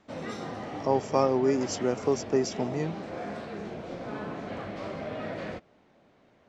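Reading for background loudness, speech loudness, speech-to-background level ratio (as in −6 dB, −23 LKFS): −37.5 LKFS, −28.0 LKFS, 9.5 dB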